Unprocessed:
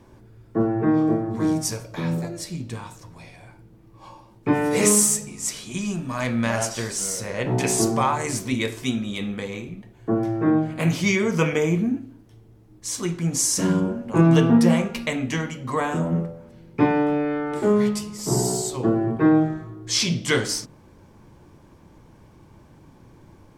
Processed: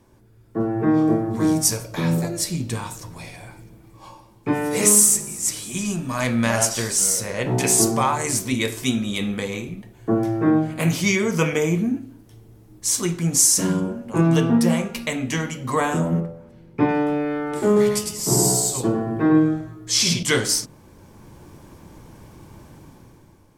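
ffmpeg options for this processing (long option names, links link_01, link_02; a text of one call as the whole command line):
ffmpeg -i in.wav -filter_complex "[0:a]asettb=1/sr,asplit=3[link_01][link_02][link_03];[link_01]atrim=end=2.854[link_04];[link_02]atrim=start=2.85:end=5.94,asetpts=PTS-STARTPTS,afade=type=in:duration=0.004:curve=qsin,afade=type=out:start_time=3.086:duration=0.004:curve=qsin,asplit=5[link_05][link_06][link_07][link_08][link_09];[link_06]adelay=329,afreqshift=-49,volume=-20.5dB[link_10];[link_07]adelay=658,afreqshift=-98,volume=-25.4dB[link_11];[link_08]adelay=987,afreqshift=-147,volume=-30.3dB[link_12];[link_09]adelay=1316,afreqshift=-196,volume=-35.1dB[link_13];[link_05][link_10][link_11][link_12][link_13]amix=inputs=5:normalize=0,atrim=end_sample=136269[link_14];[link_03]atrim=start=5.936[link_15];[link_04][link_14]acrossfade=duration=0.004:curve1=hsin:curve2=qsin[link_16];[link_16][link_15]acrossfade=duration=0.004:curve1=qsin:curve2=hsin,asettb=1/sr,asplit=3[link_17][link_18][link_19];[link_17]atrim=end=16.204[link_20];[link_18]atrim=start=16.2:end=16.89,asetpts=PTS-STARTPTS,afade=type=in:duration=0.004:curve=qsin,afade=type=out:start_time=0.686:duration=0.004:curve=qsin,highshelf=frequency=4300:gain=-11.5[link_21];[link_19]atrim=start=16.886[link_22];[link_20][link_21]acrossfade=duration=0.004:curve1=hsin:curve2=qsin[link_23];[link_23][link_22]acrossfade=duration=0.004:curve1=qsin:curve2=hsin,asettb=1/sr,asplit=3[link_24][link_25][link_26];[link_24]atrim=end=17.664[link_27];[link_25]atrim=start=17.66:end=20.23,asetpts=PTS-STARTPTS,afade=type=in:duration=0.004:curve=qsin,afade=type=out:start_time=2.566:duration=0.004:curve=qsin,aecho=1:1:103:0.631,atrim=end_sample=113337[link_28];[link_26]atrim=start=20.226[link_29];[link_27][link_28]acrossfade=duration=0.004:curve1=hsin:curve2=qsin[link_30];[link_30][link_29]acrossfade=duration=0.004:curve1=qsin:curve2=hsin,dynaudnorm=framelen=110:gausssize=13:maxgain=11.5dB,equalizer=frequency=13000:width=0.41:gain=9,volume=-5.5dB" out.wav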